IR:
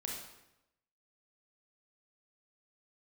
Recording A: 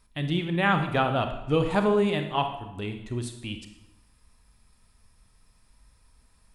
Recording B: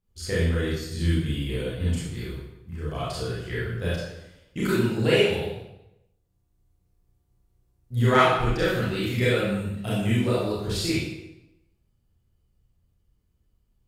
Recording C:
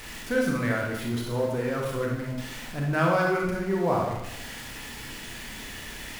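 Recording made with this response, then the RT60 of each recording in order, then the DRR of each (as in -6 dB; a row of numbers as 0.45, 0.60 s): C; 0.90, 0.90, 0.90 s; 6.0, -9.0, -1.5 dB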